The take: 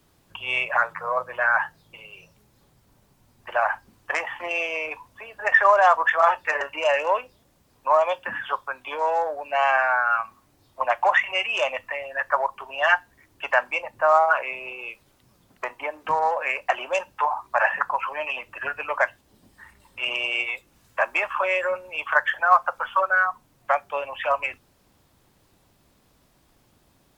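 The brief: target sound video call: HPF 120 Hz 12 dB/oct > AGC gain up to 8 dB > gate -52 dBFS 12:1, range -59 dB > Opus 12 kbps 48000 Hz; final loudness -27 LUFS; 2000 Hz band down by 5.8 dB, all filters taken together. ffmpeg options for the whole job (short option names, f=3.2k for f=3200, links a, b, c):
-af "highpass=120,equalizer=f=2k:t=o:g=-8,dynaudnorm=m=8dB,agate=range=-59dB:threshold=-52dB:ratio=12,volume=-3.5dB" -ar 48000 -c:a libopus -b:a 12k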